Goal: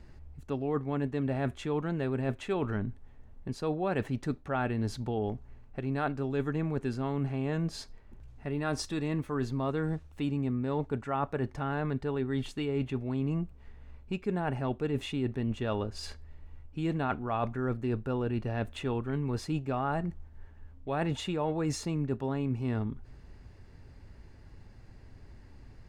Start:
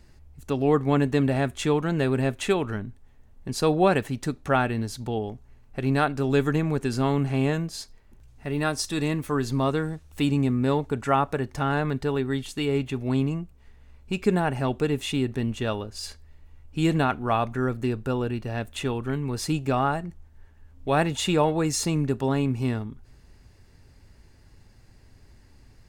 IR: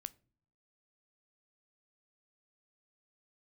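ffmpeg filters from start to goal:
-af "lowpass=f=2.1k:p=1,areverse,acompressor=threshold=-30dB:ratio=6,areverse,volume=2dB"

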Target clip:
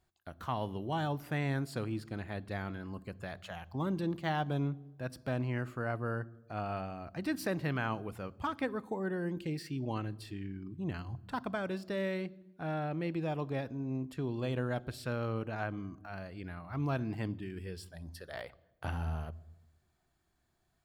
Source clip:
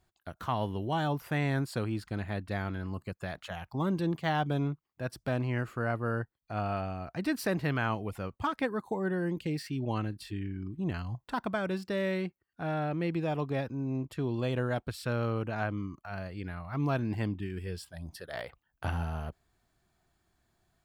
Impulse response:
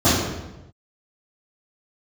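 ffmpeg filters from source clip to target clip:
-filter_complex "[0:a]asplit=2[a][b];[1:a]atrim=start_sample=2205,highshelf=f=5.3k:g=11.5[c];[b][c]afir=irnorm=-1:irlink=0,volume=-43.5dB[d];[a][d]amix=inputs=2:normalize=0,volume=-4dB"

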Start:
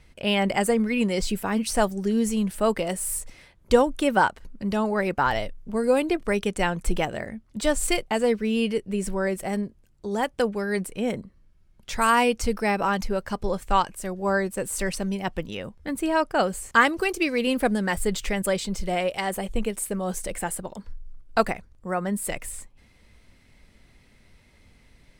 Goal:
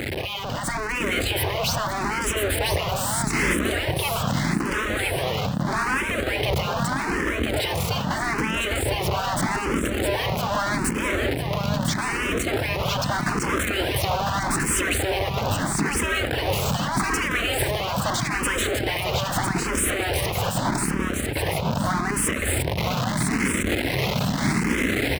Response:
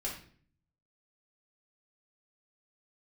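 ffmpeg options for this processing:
-filter_complex "[0:a]aeval=exprs='val(0)+0.5*0.0944*sgn(val(0))':c=same,bass=f=250:g=6,treble=f=4k:g=-10,afftfilt=real='re*lt(hypot(re,im),0.282)':imag='im*lt(hypot(re,im),0.282)':win_size=1024:overlap=0.75,asplit=2[a][b];[b]aeval=exprs='0.0266*(abs(mod(val(0)/0.0266+3,4)-2)-1)':c=same,volume=-7dB[c];[a][c]amix=inputs=2:normalize=0,alimiter=limit=-22.5dB:level=0:latency=1:release=115,highpass=43,asplit=2[d][e];[e]aecho=0:1:1003|2006|3009|4012|5015:0.631|0.227|0.0818|0.0294|0.0106[f];[d][f]amix=inputs=2:normalize=0,dynaudnorm=f=210:g=5:m=3.5dB,lowshelf=f=240:g=8,asplit=2[g][h];[h]afreqshift=0.8[i];[g][i]amix=inputs=2:normalize=1,volume=4dB"

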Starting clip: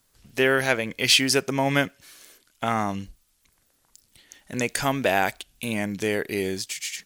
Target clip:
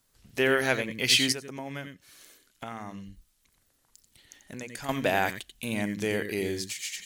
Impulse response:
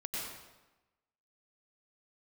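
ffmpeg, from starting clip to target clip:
-filter_complex "[1:a]atrim=start_sample=2205,atrim=end_sample=3969[a];[0:a][a]afir=irnorm=-1:irlink=0,asettb=1/sr,asplit=3[b][c][d];[b]atrim=end=1.324[e];[c]atrim=start=1.32:end=4.89,asetpts=PTS-STARTPTS,afade=t=in:d=0.004:c=qsin,afade=t=out:st=3.566:d=0.004:c=qsin,acompressor=threshold=-41dB:ratio=2.5[f];[d]atrim=start=4.886[g];[e][f]acrossfade=d=0.004:c1=hsin:c2=qsin[h];[h][g]acrossfade=d=0.004:c1=qsin:c2=hsin"

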